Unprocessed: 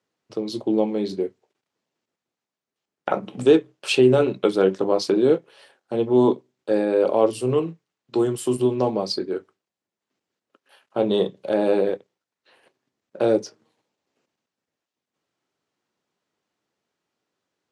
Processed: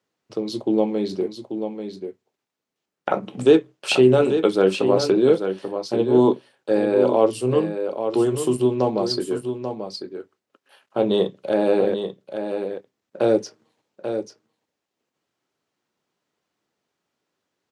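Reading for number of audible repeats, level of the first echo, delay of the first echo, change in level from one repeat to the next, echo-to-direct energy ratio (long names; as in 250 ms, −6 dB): 1, −8.0 dB, 838 ms, repeats not evenly spaced, −8.0 dB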